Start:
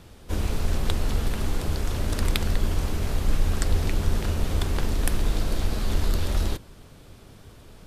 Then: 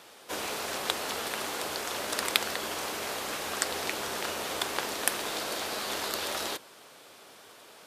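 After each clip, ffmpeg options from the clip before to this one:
ffmpeg -i in.wav -af "highpass=580,volume=4dB" out.wav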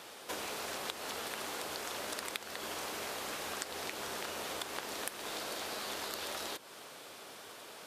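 ffmpeg -i in.wav -af "acompressor=threshold=-40dB:ratio=5,volume=2dB" out.wav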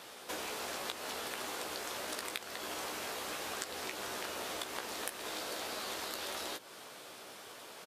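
ffmpeg -i in.wav -filter_complex "[0:a]asplit=2[link_01][link_02];[link_02]adelay=16,volume=-6.5dB[link_03];[link_01][link_03]amix=inputs=2:normalize=0,volume=-1dB" out.wav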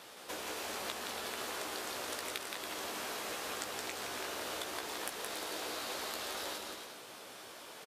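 ffmpeg -i in.wav -af "aecho=1:1:170|280.5|352.3|399|429.4:0.631|0.398|0.251|0.158|0.1,volume=-2dB" out.wav

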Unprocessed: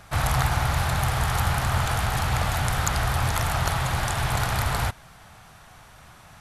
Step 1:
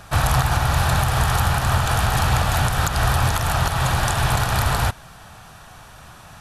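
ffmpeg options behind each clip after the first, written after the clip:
ffmpeg -i in.wav -af "bandreject=frequency=2100:width=8.6,alimiter=limit=-14dB:level=0:latency=1:release=154,volume=6dB" out.wav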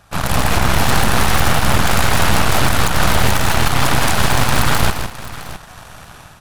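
ffmpeg -i in.wav -filter_complex "[0:a]dynaudnorm=framelen=230:gausssize=3:maxgain=12dB,aeval=exprs='0.891*(cos(1*acos(clip(val(0)/0.891,-1,1)))-cos(1*PI/2))+0.447*(cos(6*acos(clip(val(0)/0.891,-1,1)))-cos(6*PI/2))':channel_layout=same,asplit=2[link_01][link_02];[link_02]aecho=0:1:162|662:0.422|0.188[link_03];[link_01][link_03]amix=inputs=2:normalize=0,volume=-8dB" out.wav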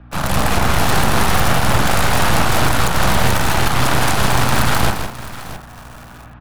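ffmpeg -i in.wav -filter_complex "[0:a]aeval=exprs='val(0)+0.0126*(sin(2*PI*60*n/s)+sin(2*PI*2*60*n/s)/2+sin(2*PI*3*60*n/s)/3+sin(2*PI*4*60*n/s)/4+sin(2*PI*5*60*n/s)/5)':channel_layout=same,acrossover=split=110|1800|2900[link_01][link_02][link_03][link_04];[link_02]asplit=2[link_05][link_06];[link_06]adelay=41,volume=-2.5dB[link_07];[link_05][link_07]amix=inputs=2:normalize=0[link_08];[link_04]acrusher=bits=6:mix=0:aa=0.000001[link_09];[link_01][link_08][link_03][link_09]amix=inputs=4:normalize=0,volume=-1.5dB" out.wav

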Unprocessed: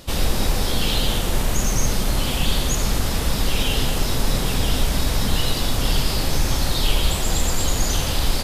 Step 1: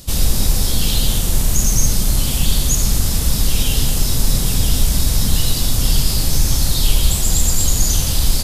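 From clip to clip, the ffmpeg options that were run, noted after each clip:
ffmpeg -i in.wav -af "bass=frequency=250:gain=10,treble=frequency=4000:gain=14,volume=-4.5dB" out.wav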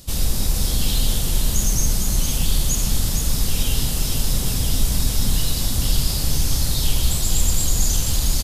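ffmpeg -i in.wav -af "aecho=1:1:459:0.501,volume=-5dB" out.wav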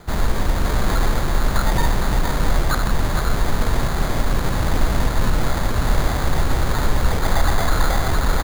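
ffmpeg -i in.wav -af "acrusher=samples=16:mix=1:aa=0.000001,volume=1dB" out.wav

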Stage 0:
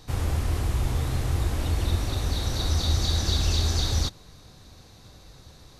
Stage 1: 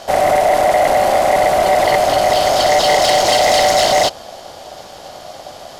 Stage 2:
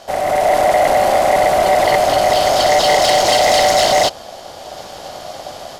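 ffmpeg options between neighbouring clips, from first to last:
ffmpeg -i in.wav -af "aeval=exprs='val(0)*sin(2*PI*670*n/s)':channel_layout=same,aeval=exprs='0.266*sin(PI/2*3.16*val(0)/0.266)':channel_layout=same,volume=4dB" out.wav
ffmpeg -i in.wav -af "dynaudnorm=framelen=240:gausssize=3:maxgain=8.5dB,volume=-5.5dB" out.wav

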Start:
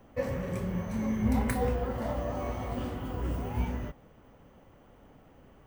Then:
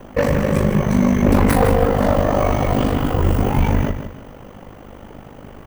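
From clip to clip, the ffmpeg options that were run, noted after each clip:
ffmpeg -i in.wav -af "aeval=exprs='0.168*sin(PI/2*2.51*val(0)/0.168)':channel_layout=same,aeval=exprs='val(0)*sin(2*PI*25*n/s)':channel_layout=same,aecho=1:1:158|316|474:0.335|0.104|0.0322,volume=8.5dB" out.wav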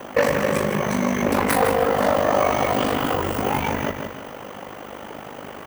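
ffmpeg -i in.wav -af "acompressor=threshold=-21dB:ratio=2.5,highpass=frequency=640:poles=1,volume=8.5dB" out.wav

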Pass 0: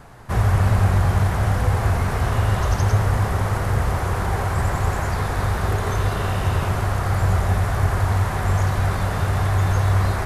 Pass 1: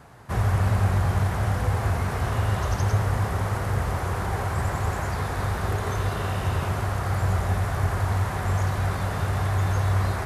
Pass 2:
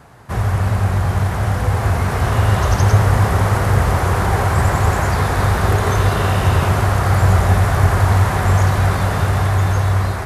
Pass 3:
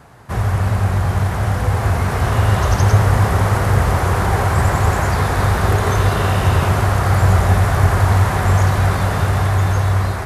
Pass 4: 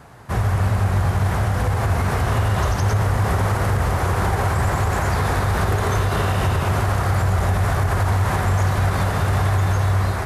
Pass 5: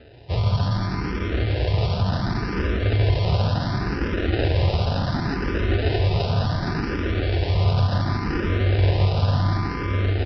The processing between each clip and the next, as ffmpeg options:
ffmpeg -i in.wav -af "highpass=53,volume=-4dB" out.wav
ffmpeg -i in.wav -af "dynaudnorm=framelen=830:gausssize=5:maxgain=6.5dB,volume=4.5dB" out.wav
ffmpeg -i in.wav -af anull out.wav
ffmpeg -i in.wav -af "alimiter=limit=-11dB:level=0:latency=1:release=92" out.wav
ffmpeg -i in.wav -filter_complex "[0:a]aresample=11025,acrusher=samples=10:mix=1:aa=0.000001,aresample=44100,aecho=1:1:165:0.501,asplit=2[link_01][link_02];[link_02]afreqshift=0.69[link_03];[link_01][link_03]amix=inputs=2:normalize=1" out.wav

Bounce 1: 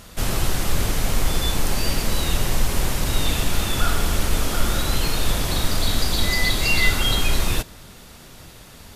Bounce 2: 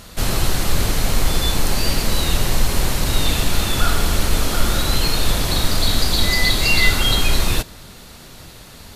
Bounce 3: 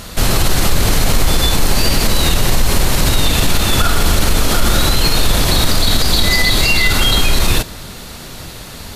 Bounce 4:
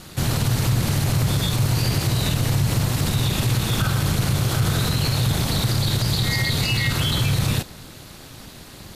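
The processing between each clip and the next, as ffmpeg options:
ffmpeg -i in.wav -af "equalizer=frequency=4200:width=7.9:gain=5.5,volume=3dB" out.wav
ffmpeg -i in.wav -af "alimiter=level_in=11dB:limit=-1dB:release=50:level=0:latency=1,volume=-2dB" out.wav
ffmpeg -i in.wav -af "aeval=exprs='val(0)*sin(2*PI*120*n/s)':channel_layout=same,volume=-7dB" out.wav

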